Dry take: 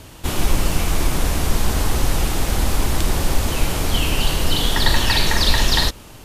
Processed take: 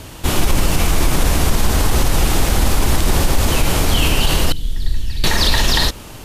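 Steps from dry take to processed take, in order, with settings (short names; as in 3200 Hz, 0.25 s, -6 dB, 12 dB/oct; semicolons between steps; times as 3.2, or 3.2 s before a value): 4.52–5.24 passive tone stack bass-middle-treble 10-0-1; maximiser +9.5 dB; gain -3.5 dB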